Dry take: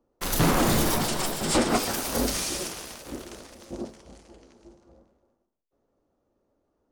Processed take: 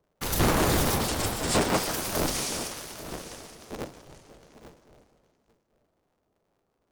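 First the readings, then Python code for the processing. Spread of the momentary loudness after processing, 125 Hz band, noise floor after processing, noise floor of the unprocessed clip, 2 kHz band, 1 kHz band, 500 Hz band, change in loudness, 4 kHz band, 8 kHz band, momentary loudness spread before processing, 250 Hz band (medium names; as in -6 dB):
17 LU, 0.0 dB, -76 dBFS, -76 dBFS, 0.0 dB, -0.5 dB, -0.5 dB, -1.5 dB, -1.0 dB, -1.0 dB, 18 LU, -3.0 dB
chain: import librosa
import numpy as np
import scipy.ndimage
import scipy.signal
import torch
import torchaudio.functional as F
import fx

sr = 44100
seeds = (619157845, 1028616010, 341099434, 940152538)

p1 = fx.cycle_switch(x, sr, every=3, mode='inverted')
p2 = p1 + fx.echo_single(p1, sr, ms=831, db=-15.5, dry=0)
y = p2 * librosa.db_to_amplitude(-1.5)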